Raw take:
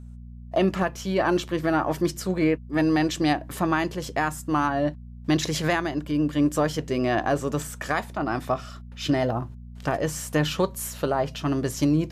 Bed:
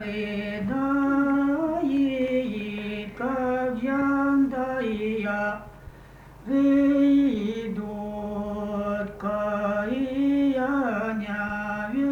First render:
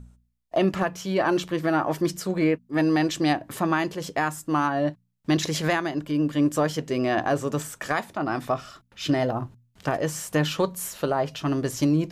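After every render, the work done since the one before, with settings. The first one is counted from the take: de-hum 60 Hz, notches 4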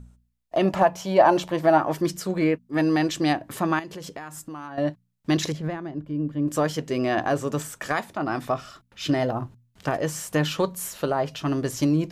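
0.65–1.78 s: high-order bell 740 Hz +10 dB 1 oct; 3.79–4.78 s: compression 8:1, threshold -33 dBFS; 5.52–6.48 s: FFT filter 140 Hz 0 dB, 4.3 kHz -19 dB, 7.6 kHz -23 dB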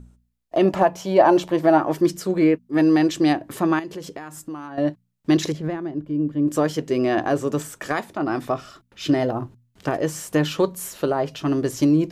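peaking EQ 350 Hz +6.5 dB 0.89 oct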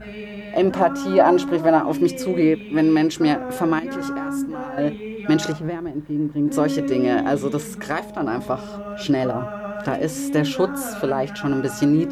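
add bed -4.5 dB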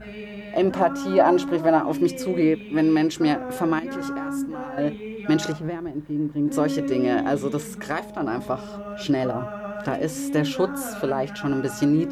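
trim -2.5 dB

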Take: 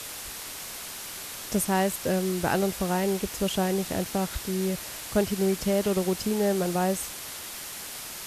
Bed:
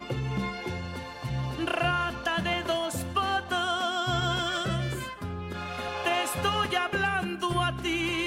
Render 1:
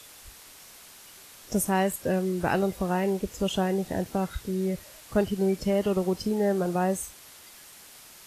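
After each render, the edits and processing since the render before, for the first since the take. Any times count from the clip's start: noise print and reduce 11 dB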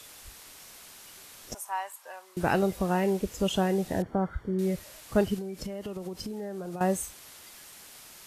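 1.54–2.37 s: ladder high-pass 820 Hz, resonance 60%; 4.02–4.59 s: Savitzky-Golay filter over 41 samples; 5.38–6.81 s: compression 16:1, threshold -32 dBFS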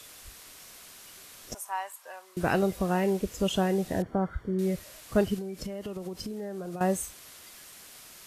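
band-stop 860 Hz, Q 12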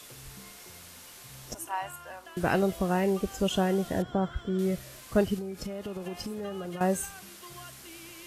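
add bed -20.5 dB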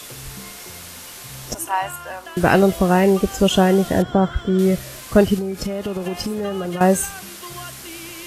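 trim +11.5 dB; peak limiter -1 dBFS, peak gain reduction 1.5 dB

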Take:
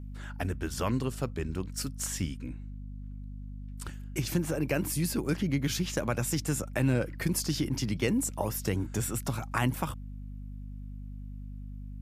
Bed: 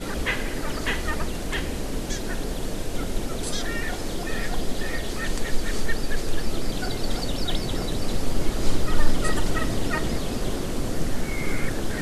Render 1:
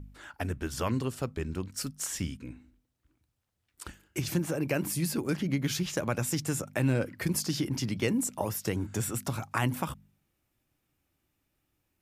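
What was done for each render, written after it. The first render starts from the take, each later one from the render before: de-hum 50 Hz, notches 5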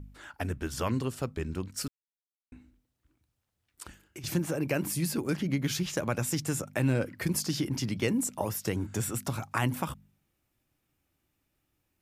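1.88–2.52 s: mute; 3.83–4.24 s: compression, threshold -41 dBFS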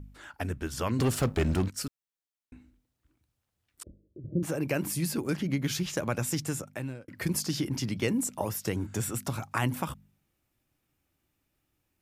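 0.99–1.70 s: waveshaping leveller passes 3; 3.83–4.43 s: steep low-pass 610 Hz 96 dB/octave; 6.41–7.08 s: fade out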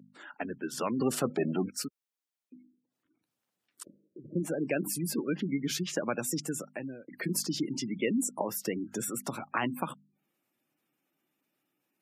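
high-pass 180 Hz 24 dB/octave; spectral gate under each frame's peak -20 dB strong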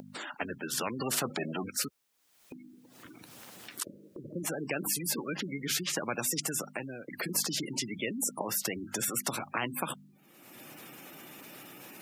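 upward compressor, threshold -46 dBFS; spectrum-flattening compressor 2:1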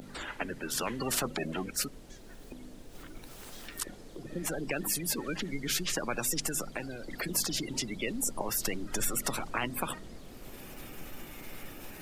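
add bed -21.5 dB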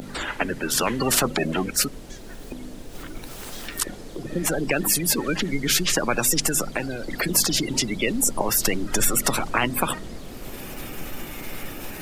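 trim +10.5 dB

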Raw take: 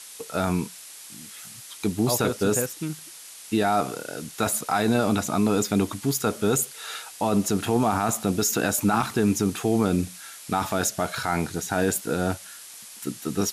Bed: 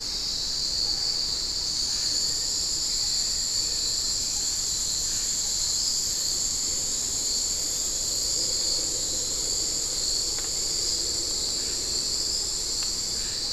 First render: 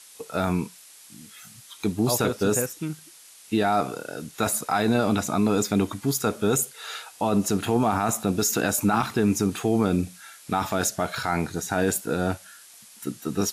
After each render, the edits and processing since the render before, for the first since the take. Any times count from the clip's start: noise print and reduce 6 dB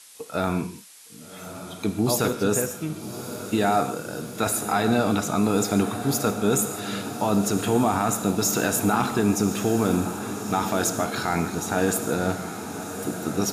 echo that smears into a reverb 1166 ms, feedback 70%, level -11 dB; gated-style reverb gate 180 ms flat, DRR 9.5 dB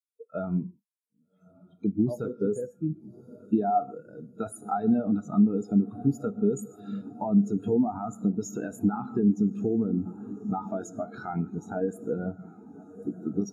compression 6:1, threshold -23 dBFS, peak gain reduction 7.5 dB; spectral contrast expander 2.5:1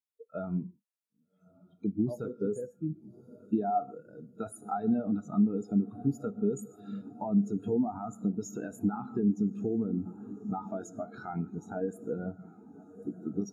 trim -4.5 dB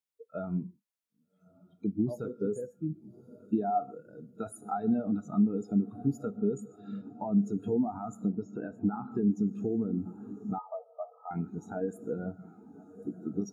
6.37–7.35 s: distance through air 73 m; 8.31–9.12 s: low-pass 1.9 kHz; 10.58–11.31 s: brick-wall FIR band-pass 460–1300 Hz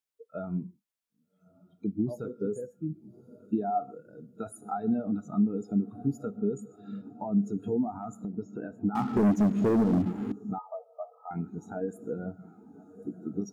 7.94–8.37 s: compression, threshold -31 dBFS; 8.95–10.32 s: waveshaping leveller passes 3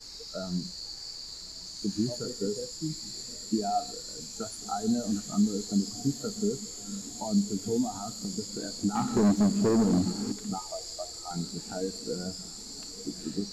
add bed -14.5 dB

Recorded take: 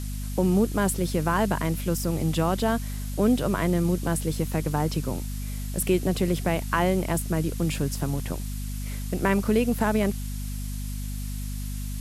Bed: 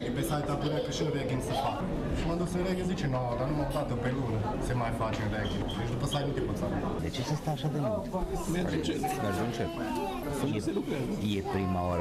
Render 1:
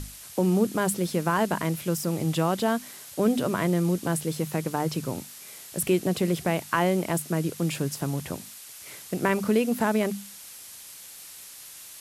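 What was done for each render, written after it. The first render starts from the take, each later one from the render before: hum notches 50/100/150/200/250 Hz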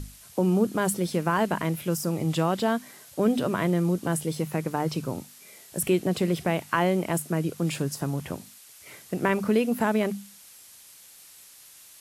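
noise print and reduce 6 dB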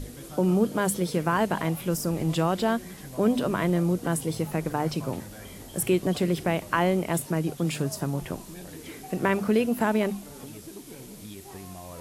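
add bed -12 dB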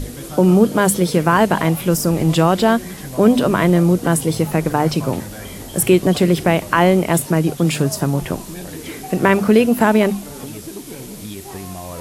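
trim +10.5 dB; peak limiter -1 dBFS, peak gain reduction 3 dB

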